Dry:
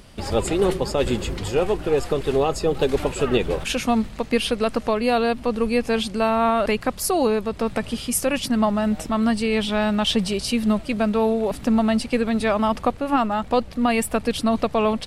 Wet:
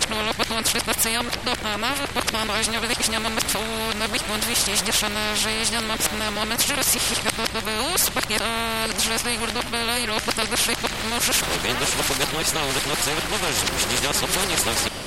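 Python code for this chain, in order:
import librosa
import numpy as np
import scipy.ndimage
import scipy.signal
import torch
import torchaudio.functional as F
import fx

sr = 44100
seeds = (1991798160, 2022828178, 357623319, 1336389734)

y = x[::-1].copy()
y = fx.spectral_comp(y, sr, ratio=4.0)
y = y * librosa.db_to_amplitude(6.0)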